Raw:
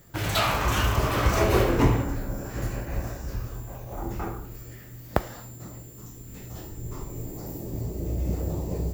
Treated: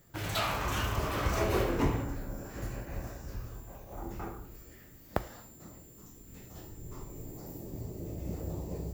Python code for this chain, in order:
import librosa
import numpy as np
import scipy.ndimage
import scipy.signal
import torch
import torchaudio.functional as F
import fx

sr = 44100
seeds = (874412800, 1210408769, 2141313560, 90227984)

y = fx.hum_notches(x, sr, base_hz=60, count=2)
y = y * librosa.db_to_amplitude(-7.5)